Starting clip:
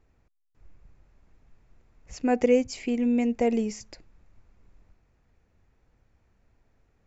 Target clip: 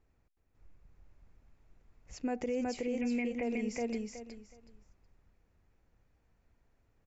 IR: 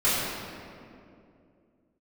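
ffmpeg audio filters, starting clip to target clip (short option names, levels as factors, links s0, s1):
-filter_complex "[0:a]asettb=1/sr,asplit=3[s0][s1][s2];[s0]atrim=end=3.014[s3];[s1]atrim=start=3.01:end=3.43,asetpts=PTS-STARTPTS,afade=t=in:d=0.004:c=qsin,afade=t=out:st=0.416:d=0.004:c=qsin,lowpass=f=2300:t=q:w=5[s4];[s2]atrim=start=3.426[s5];[s3][s4]acrossfade=d=0.004:c1=hsin:c2=qsin[s6];[s6][s5]acrossfade=d=0.004:c1=qsin:c2=hsin,aecho=1:1:370|740|1110:0.631|0.133|0.0278,alimiter=limit=0.0944:level=0:latency=1:release=55,volume=0.473"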